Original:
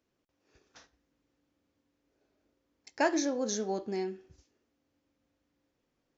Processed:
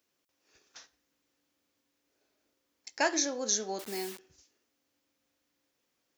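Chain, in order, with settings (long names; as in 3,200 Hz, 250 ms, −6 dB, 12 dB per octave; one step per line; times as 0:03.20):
0:03.79–0:04.19: bit-depth reduction 8 bits, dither none
spectral tilt +3 dB per octave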